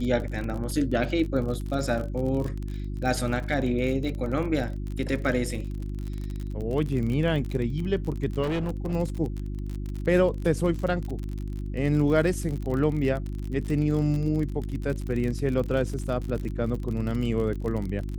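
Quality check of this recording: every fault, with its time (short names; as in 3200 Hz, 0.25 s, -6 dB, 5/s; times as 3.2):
crackle 43/s -31 dBFS
hum 50 Hz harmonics 7 -32 dBFS
8.42–8.94 clipped -24 dBFS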